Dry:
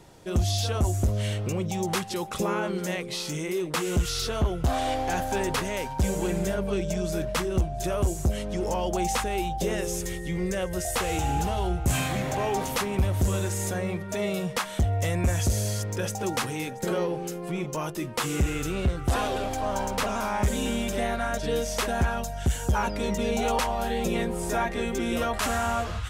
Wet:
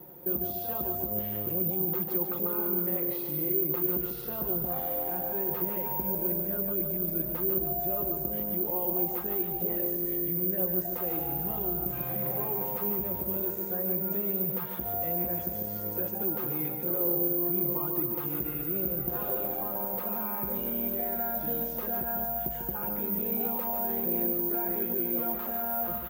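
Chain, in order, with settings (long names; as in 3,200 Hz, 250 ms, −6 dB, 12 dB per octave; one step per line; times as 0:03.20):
comb filter 5.6 ms, depth 76%
brickwall limiter −26 dBFS, peak gain reduction 13 dB
resonant band-pass 360 Hz, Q 0.65
on a send: repeating echo 146 ms, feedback 41%, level −6.5 dB
on the sum: bad sample-rate conversion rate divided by 3×, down none, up zero stuff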